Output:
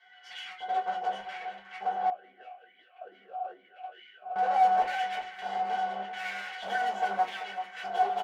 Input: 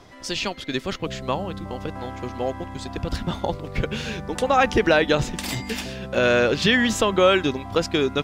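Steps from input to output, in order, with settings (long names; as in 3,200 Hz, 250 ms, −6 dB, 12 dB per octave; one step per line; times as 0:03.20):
lower of the sound and its delayed copy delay 1.5 ms
notch filter 1,700 Hz, Q 6.5
comb filter 5.7 ms, depth 32%
dynamic equaliser 810 Hz, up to −3 dB, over −32 dBFS, Q 0.98
resonances in every octave F#, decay 0.12 s
hard clipping −34 dBFS, distortion −8 dB
mid-hump overdrive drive 20 dB, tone 2,000 Hz, clips at −34 dBFS
auto-filter high-pass square 0.83 Hz 690–2,100 Hz
delay that swaps between a low-pass and a high-pass 387 ms, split 1,400 Hz, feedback 66%, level −9.5 dB
convolution reverb RT60 0.25 s, pre-delay 3 ms, DRR −3.5 dB
0:02.10–0:04.36: formant filter swept between two vowels a-i 2.3 Hz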